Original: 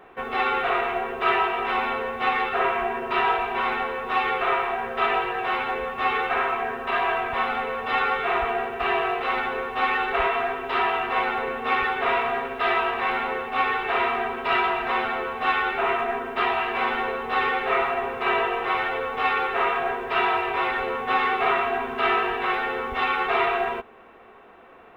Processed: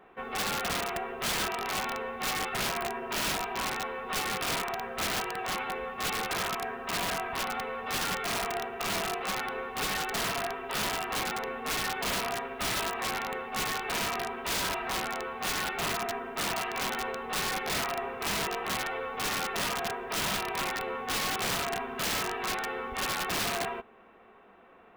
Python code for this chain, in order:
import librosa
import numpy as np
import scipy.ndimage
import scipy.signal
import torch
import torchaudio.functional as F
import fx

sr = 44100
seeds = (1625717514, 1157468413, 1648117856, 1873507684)

y = (np.mod(10.0 ** (17.5 / 20.0) * x + 1.0, 2.0) - 1.0) / 10.0 ** (17.5 / 20.0)
y = fx.peak_eq(y, sr, hz=200.0, db=6.5, octaves=0.36)
y = y * 10.0 ** (-7.5 / 20.0)